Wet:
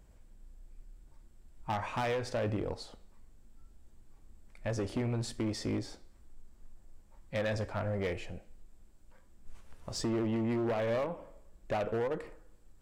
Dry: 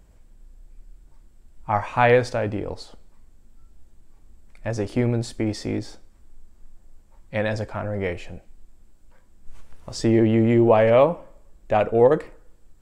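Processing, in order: one diode to ground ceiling -18.5 dBFS; compressor 16:1, threshold -22 dBFS, peak gain reduction 10.5 dB; flange 0.74 Hz, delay 8.2 ms, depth 3.2 ms, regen +89%; hard clip -27.5 dBFS, distortion -14 dB

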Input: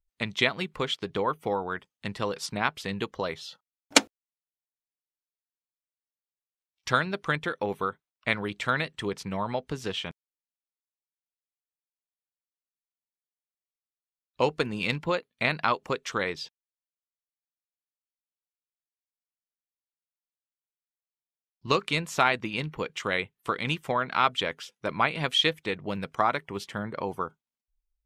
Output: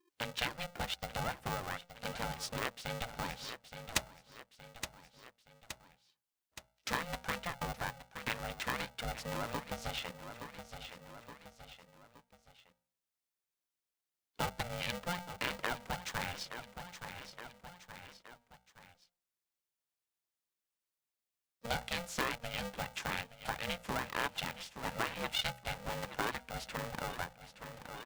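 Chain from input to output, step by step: on a send: feedback echo 0.87 s, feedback 39%, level -17 dB; on the sum: compressor 2:1, threshold -48 dBFS, peak gain reduction 19 dB; de-hum 59.32 Hz, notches 10; polarity switched at an audio rate 350 Hz; gain +3 dB

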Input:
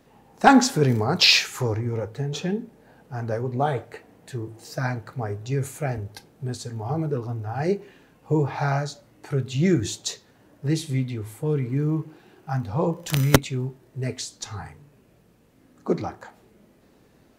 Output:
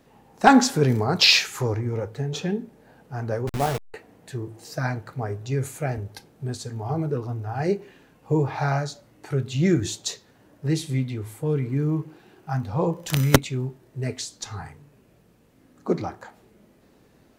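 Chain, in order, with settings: 3.47–3.94 level-crossing sampler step -24.5 dBFS

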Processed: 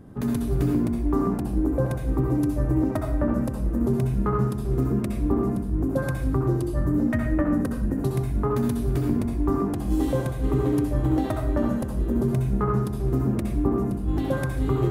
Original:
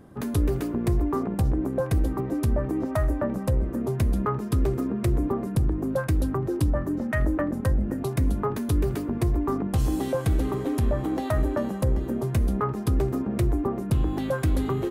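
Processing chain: low shelf 250 Hz +9.5 dB; negative-ratio compressor -18 dBFS, ratio -0.5; on a send: reverb RT60 0.65 s, pre-delay 57 ms, DRR 1 dB; on the sum: gain -6 dB

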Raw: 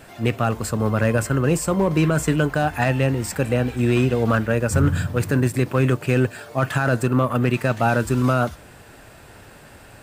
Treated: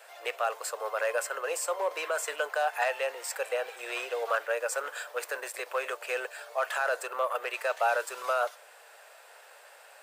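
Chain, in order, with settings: steep high-pass 490 Hz 48 dB/oct; gain -5.5 dB

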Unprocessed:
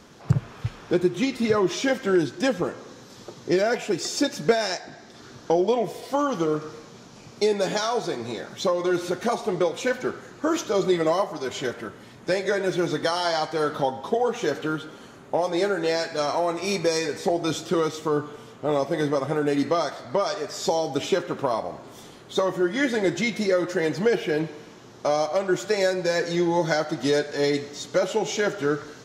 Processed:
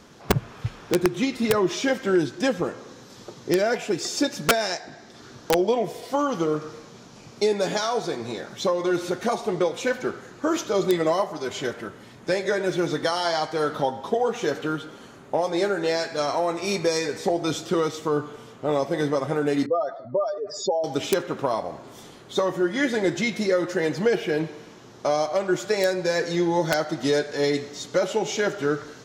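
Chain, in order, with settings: 19.66–20.84 spectral contrast raised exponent 2.3; wrapped overs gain 10.5 dB

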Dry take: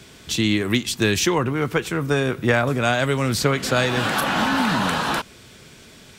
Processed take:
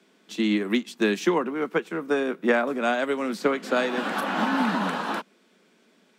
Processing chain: steep high-pass 180 Hz 72 dB/oct; high shelf 2800 Hz -11 dB; upward expander 1.5:1, over -40 dBFS

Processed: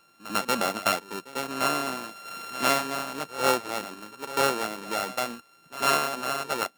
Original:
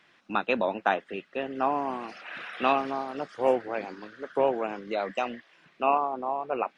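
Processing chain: sample sorter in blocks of 32 samples; pre-echo 98 ms -15 dB

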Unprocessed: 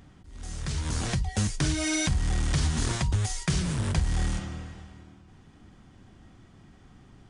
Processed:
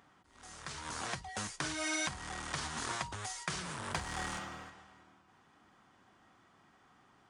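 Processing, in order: HPF 500 Hz 6 dB/oct; bell 1100 Hz +9 dB 1.6 oct; 3.91–4.7 sample leveller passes 1; gain -8 dB

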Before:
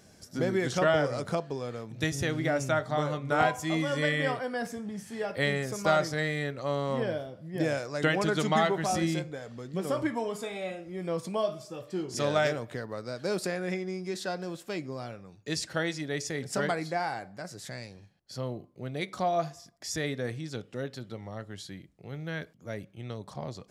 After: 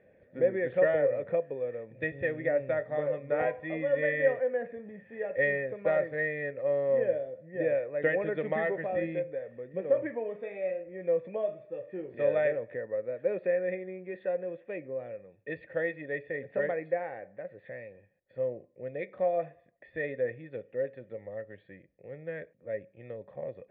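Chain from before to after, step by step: vocal tract filter e; gain +9 dB

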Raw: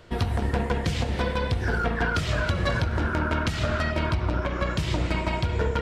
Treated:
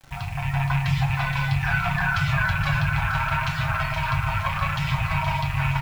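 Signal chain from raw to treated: rattling part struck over -23 dBFS, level -18 dBFS; LPF 1600 Hz 6 dB/oct; reverb removal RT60 0.93 s; elliptic band-stop 160–750 Hz, stop band 40 dB; comb 7.5 ms, depth 78%; limiter -21.5 dBFS, peak gain reduction 8.5 dB; AGC gain up to 6 dB; bit-crush 8-bit; split-band echo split 720 Hz, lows 0.108 s, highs 0.471 s, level -6.5 dB; on a send at -2 dB: reverb RT60 0.40 s, pre-delay 3 ms

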